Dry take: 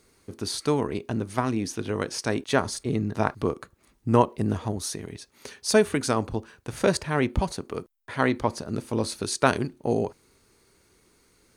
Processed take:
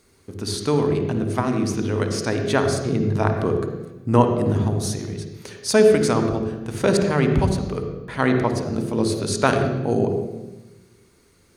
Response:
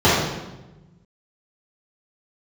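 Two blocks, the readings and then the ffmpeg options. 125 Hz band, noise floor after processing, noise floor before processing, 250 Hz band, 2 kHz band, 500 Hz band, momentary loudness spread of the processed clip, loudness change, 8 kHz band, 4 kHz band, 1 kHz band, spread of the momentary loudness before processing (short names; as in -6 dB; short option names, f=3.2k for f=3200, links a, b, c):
+8.0 dB, -57 dBFS, -64 dBFS, +6.0 dB, +3.0 dB, +6.5 dB, 12 LU, +5.5 dB, +2.0 dB, +2.5 dB, +3.0 dB, 15 LU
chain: -filter_complex "[0:a]asplit=2[a][b];[b]equalizer=f=910:w=4.3:g=-12[c];[1:a]atrim=start_sample=2205,adelay=51[d];[c][d]afir=irnorm=-1:irlink=0,volume=-28.5dB[e];[a][e]amix=inputs=2:normalize=0,volume=2dB"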